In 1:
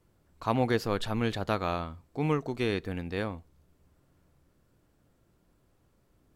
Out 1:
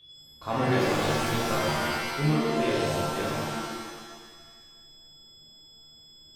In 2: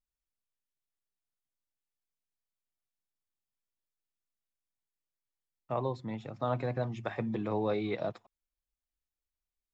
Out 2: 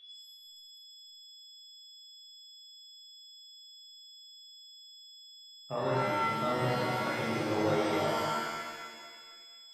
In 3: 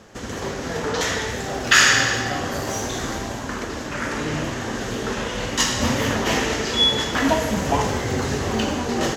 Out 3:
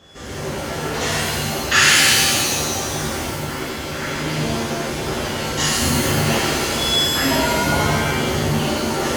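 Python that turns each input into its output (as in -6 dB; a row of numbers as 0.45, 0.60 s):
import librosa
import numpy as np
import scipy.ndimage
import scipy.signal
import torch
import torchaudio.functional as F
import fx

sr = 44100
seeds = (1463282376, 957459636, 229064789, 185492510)

y = x + 10.0 ** (-48.0 / 20.0) * np.sin(2.0 * np.pi * 3400.0 * np.arange(len(x)) / sr)
y = fx.dereverb_blind(y, sr, rt60_s=1.4)
y = fx.rev_shimmer(y, sr, seeds[0], rt60_s=1.5, semitones=7, shimmer_db=-2, drr_db=-7.5)
y = y * 10.0 ** (-6.0 / 20.0)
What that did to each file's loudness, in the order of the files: +4.0, +3.0, +3.5 LU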